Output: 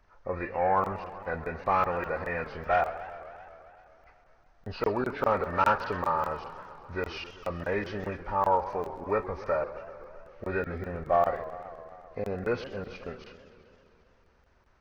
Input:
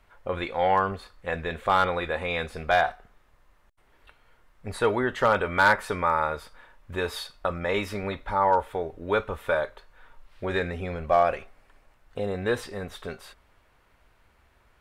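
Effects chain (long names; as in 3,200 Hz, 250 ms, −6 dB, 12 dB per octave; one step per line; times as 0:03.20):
hearing-aid frequency compression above 1,100 Hz 1.5 to 1
regular buffer underruns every 0.20 s, samples 1,024, zero, from 0:00.84
feedback echo with a swinging delay time 130 ms, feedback 74%, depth 210 cents, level −14.5 dB
level −3 dB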